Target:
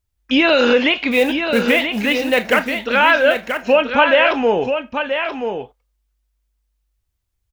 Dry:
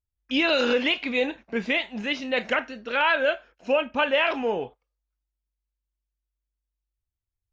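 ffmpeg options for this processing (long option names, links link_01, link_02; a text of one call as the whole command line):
ffmpeg -i in.wav -filter_complex "[0:a]acrossover=split=2900[link_01][link_02];[link_02]acompressor=threshold=-35dB:ratio=4:attack=1:release=60[link_03];[link_01][link_03]amix=inputs=2:normalize=0,asplit=2[link_04][link_05];[link_05]alimiter=limit=-21dB:level=0:latency=1:release=496,volume=0dB[link_06];[link_04][link_06]amix=inputs=2:normalize=0,asplit=3[link_07][link_08][link_09];[link_07]afade=type=out:start_time=1.11:duration=0.02[link_10];[link_08]acrusher=bits=5:mode=log:mix=0:aa=0.000001,afade=type=in:start_time=1.11:duration=0.02,afade=type=out:start_time=2.85:duration=0.02[link_11];[link_09]afade=type=in:start_time=2.85:duration=0.02[link_12];[link_10][link_11][link_12]amix=inputs=3:normalize=0,aecho=1:1:981:0.447,volume=6dB" out.wav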